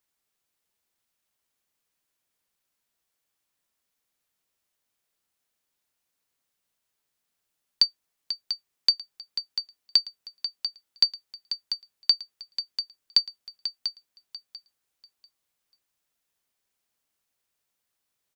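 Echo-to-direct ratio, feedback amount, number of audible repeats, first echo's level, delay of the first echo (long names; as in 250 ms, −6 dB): −10.0 dB, 21%, 2, −10.0 dB, 692 ms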